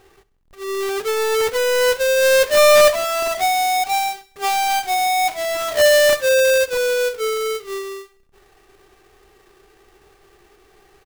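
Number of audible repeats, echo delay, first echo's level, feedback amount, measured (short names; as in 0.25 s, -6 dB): 3, 67 ms, -20.0 dB, 50%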